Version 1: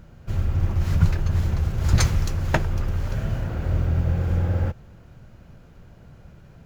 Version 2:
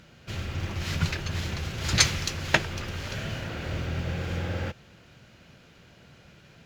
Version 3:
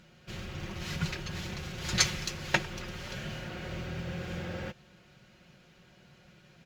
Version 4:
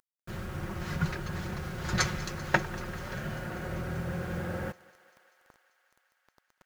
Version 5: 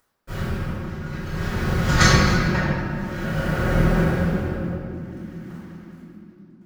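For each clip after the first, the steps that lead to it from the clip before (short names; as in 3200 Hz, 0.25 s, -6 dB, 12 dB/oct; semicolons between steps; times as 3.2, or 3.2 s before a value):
weighting filter D; gain -2 dB
comb 5.5 ms, depth 52%; gain -6 dB
bit-crush 8-bit; resonant high shelf 2000 Hz -8 dB, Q 1.5; thinning echo 0.195 s, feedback 82%, high-pass 460 Hz, level -20.5 dB; gain +3 dB
tremolo 0.54 Hz, depth 89%; reverb, pre-delay 4 ms, DRR -15.5 dB; gain -2 dB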